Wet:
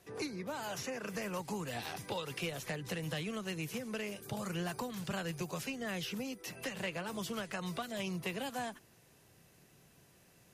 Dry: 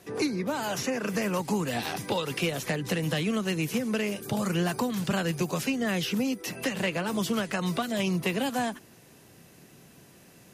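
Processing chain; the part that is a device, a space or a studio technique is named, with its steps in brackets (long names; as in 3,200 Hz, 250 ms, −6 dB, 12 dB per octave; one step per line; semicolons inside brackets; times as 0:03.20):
low shelf boost with a cut just above (low-shelf EQ 74 Hz +6 dB; parametric band 250 Hz −5.5 dB 1.1 octaves)
level −9 dB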